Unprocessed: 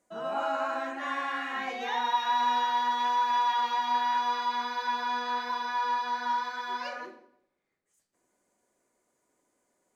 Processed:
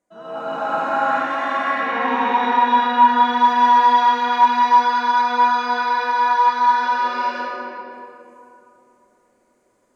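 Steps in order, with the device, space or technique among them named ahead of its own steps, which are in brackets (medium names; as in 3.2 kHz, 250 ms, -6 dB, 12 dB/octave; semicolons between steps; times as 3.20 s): 1.35–3.09 s: tone controls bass +9 dB, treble -11 dB; gated-style reverb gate 420 ms rising, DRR -6.5 dB; swimming-pool hall (reverberation RT60 3.0 s, pre-delay 77 ms, DRR -6.5 dB; treble shelf 4 kHz -5.5 dB); trim -2.5 dB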